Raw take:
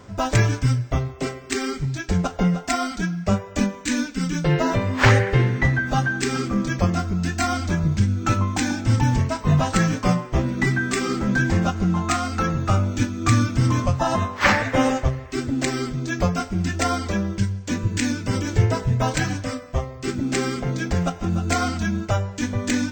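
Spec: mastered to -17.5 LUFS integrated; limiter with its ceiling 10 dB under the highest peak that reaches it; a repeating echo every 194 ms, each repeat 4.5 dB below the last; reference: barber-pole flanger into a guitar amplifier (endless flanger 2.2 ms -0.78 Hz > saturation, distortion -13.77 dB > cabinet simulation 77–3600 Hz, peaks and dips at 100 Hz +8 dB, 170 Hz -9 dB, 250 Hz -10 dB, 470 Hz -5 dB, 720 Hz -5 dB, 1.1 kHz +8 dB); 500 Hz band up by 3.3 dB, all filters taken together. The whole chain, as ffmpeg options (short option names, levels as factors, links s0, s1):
-filter_complex "[0:a]equalizer=f=500:t=o:g=8.5,alimiter=limit=0.335:level=0:latency=1,aecho=1:1:194|388|582|776|970|1164|1358|1552|1746:0.596|0.357|0.214|0.129|0.0772|0.0463|0.0278|0.0167|0.01,asplit=2[s0][s1];[s1]adelay=2.2,afreqshift=-0.78[s2];[s0][s2]amix=inputs=2:normalize=1,asoftclip=threshold=0.126,highpass=77,equalizer=f=100:t=q:w=4:g=8,equalizer=f=170:t=q:w=4:g=-9,equalizer=f=250:t=q:w=4:g=-10,equalizer=f=470:t=q:w=4:g=-5,equalizer=f=720:t=q:w=4:g=-5,equalizer=f=1100:t=q:w=4:g=8,lowpass=f=3600:w=0.5412,lowpass=f=3600:w=1.3066,volume=2.66"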